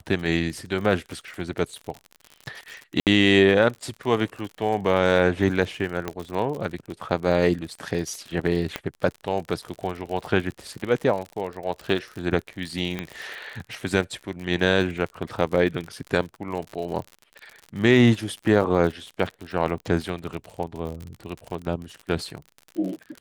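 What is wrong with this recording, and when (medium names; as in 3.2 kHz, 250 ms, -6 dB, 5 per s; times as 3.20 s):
crackle 57 per s -31 dBFS
3.00–3.07 s: dropout 68 ms
6.08 s: pop -13 dBFS
8.76 s: pop -12 dBFS
12.99 s: pop -15 dBFS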